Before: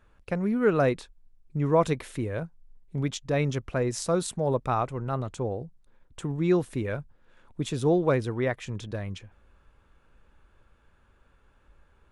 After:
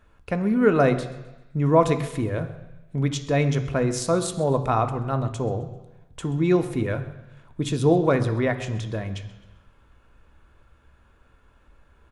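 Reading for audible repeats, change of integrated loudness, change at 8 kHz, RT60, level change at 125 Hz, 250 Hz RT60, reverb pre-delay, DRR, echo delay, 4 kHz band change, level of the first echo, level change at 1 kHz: 2, +4.5 dB, +4.0 dB, 1.0 s, +5.5 dB, 1.0 s, 3 ms, 6.5 dB, 0.131 s, +4.0 dB, -19.0 dB, +5.0 dB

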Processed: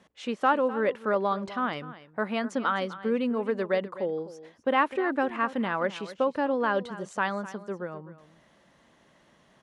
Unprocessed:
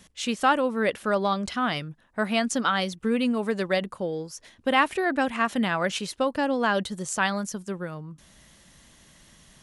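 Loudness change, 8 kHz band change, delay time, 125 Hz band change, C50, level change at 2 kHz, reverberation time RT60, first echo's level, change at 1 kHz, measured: -2.5 dB, under -15 dB, 0.254 s, -6.0 dB, none, -4.5 dB, none, -15.5 dB, -2.0 dB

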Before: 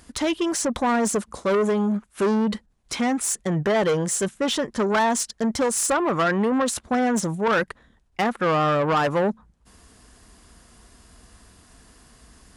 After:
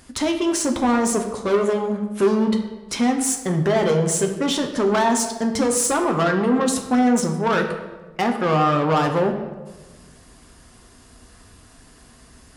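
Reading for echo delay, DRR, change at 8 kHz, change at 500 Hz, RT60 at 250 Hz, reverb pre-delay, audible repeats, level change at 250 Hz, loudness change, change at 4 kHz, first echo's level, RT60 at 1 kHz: none, 3.0 dB, +2.5 dB, +2.5 dB, 1.6 s, 8 ms, none, +3.5 dB, +2.5 dB, +2.0 dB, none, 1.1 s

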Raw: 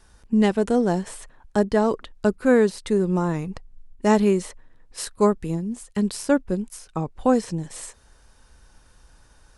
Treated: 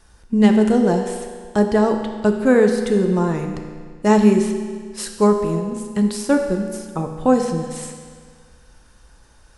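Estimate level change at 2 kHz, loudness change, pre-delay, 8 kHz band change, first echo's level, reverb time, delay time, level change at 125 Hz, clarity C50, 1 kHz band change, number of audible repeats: +3.5 dB, +4.5 dB, 8 ms, +3.0 dB, none, 1.8 s, none, +4.0 dB, 6.0 dB, +3.5 dB, none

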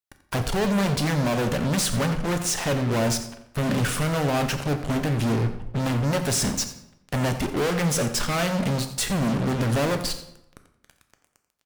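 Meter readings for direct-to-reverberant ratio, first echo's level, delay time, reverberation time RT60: 6.5 dB, -14.5 dB, 87 ms, 0.80 s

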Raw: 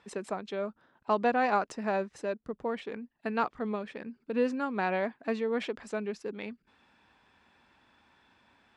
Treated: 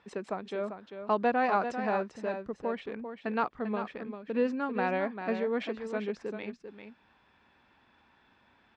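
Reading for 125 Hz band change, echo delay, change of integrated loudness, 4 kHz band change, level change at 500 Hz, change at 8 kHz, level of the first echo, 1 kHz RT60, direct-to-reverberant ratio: n/a, 0.394 s, 0.0 dB, -2.0 dB, 0.0 dB, n/a, -8.5 dB, none, none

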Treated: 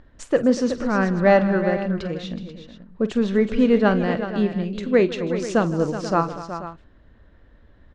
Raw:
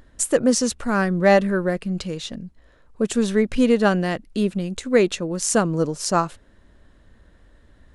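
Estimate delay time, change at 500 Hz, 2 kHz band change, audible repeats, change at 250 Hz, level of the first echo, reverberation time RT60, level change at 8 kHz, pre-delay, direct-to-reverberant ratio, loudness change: 47 ms, +0.5 dB, -1.0 dB, 5, +0.5 dB, -14.5 dB, none, under -15 dB, none, none, 0.0 dB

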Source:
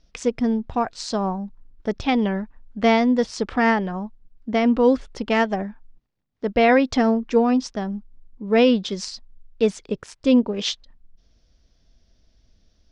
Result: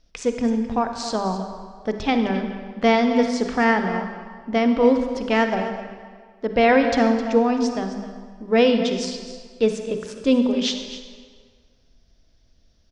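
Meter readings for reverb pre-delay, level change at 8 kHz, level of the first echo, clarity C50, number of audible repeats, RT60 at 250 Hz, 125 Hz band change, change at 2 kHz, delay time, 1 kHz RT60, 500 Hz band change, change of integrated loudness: 38 ms, +1.0 dB, -14.0 dB, 6.0 dB, 1, 1.6 s, n/a, +1.0 dB, 0.261 s, 1.8 s, +1.0 dB, +0.5 dB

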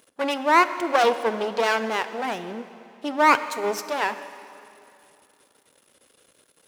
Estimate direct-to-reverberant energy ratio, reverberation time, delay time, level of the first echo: 11.5 dB, 2.7 s, none, none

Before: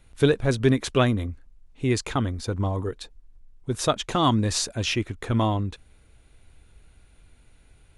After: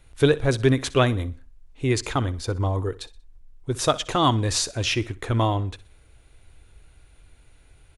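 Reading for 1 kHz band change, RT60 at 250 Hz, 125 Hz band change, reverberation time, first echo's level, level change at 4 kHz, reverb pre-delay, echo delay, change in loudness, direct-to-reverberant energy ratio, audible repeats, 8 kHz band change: +2.0 dB, none, +1.5 dB, none, -19.0 dB, +2.0 dB, none, 62 ms, +1.0 dB, none, 2, +2.0 dB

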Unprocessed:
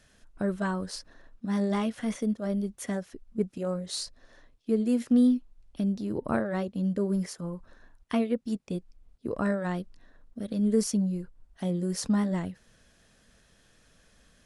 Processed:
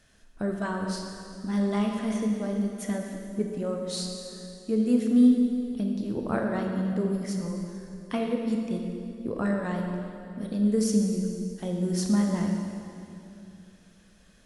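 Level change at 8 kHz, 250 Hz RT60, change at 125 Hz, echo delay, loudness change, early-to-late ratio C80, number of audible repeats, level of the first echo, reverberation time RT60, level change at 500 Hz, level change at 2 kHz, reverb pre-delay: +1.0 dB, 3.1 s, +2.0 dB, none, +2.0 dB, 3.5 dB, none, none, 2.7 s, +1.0 dB, +1.0 dB, 18 ms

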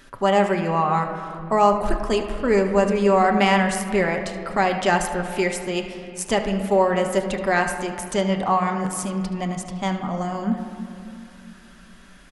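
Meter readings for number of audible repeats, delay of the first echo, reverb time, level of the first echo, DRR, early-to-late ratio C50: 1, 74 ms, 2.6 s, -14.5 dB, 3.0 dB, 7.0 dB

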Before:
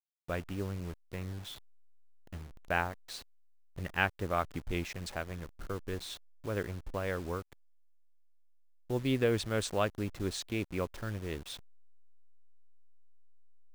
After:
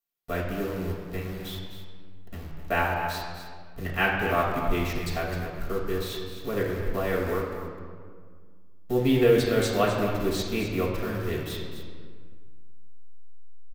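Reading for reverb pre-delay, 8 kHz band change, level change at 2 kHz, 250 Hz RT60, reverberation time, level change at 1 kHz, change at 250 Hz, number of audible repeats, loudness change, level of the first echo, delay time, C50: 4 ms, +4.0 dB, +7.5 dB, 2.4 s, 1.8 s, +8.5 dB, +9.0 dB, 1, +8.5 dB, -9.5 dB, 0.257 s, 1.5 dB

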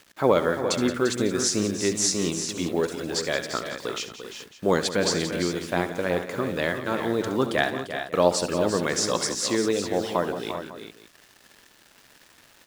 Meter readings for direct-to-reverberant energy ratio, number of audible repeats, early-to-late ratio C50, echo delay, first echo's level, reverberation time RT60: none, 5, none, 68 ms, -14.0 dB, none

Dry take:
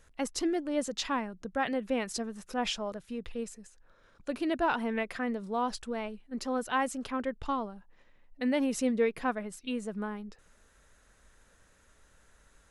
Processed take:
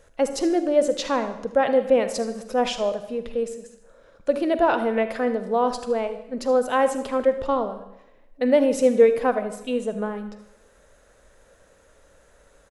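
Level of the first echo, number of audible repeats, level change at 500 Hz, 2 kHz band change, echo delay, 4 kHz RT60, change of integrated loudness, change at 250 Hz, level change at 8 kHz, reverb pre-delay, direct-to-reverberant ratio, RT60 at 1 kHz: -15.0 dB, 1, +14.0 dB, +4.5 dB, 77 ms, 0.85 s, +10.0 dB, +6.5 dB, +4.0 dB, 38 ms, 9.5 dB, 0.85 s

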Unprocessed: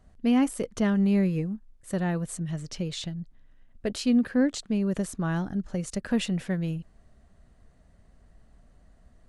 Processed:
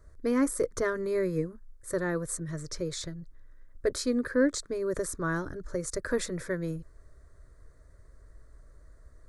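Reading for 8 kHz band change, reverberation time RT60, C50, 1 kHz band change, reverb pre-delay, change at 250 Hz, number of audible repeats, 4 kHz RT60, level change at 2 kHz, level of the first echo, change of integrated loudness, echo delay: +3.0 dB, none, none, -1.5 dB, none, -7.0 dB, none, none, +2.0 dB, none, -3.5 dB, none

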